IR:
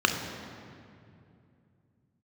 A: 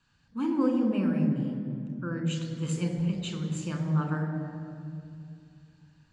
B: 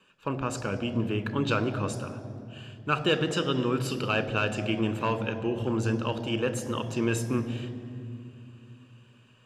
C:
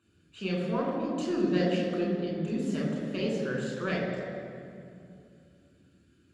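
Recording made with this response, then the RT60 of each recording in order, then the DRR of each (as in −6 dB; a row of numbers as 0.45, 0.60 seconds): A; 2.5, 2.5, 2.5 seconds; 3.5, 11.0, −2.5 decibels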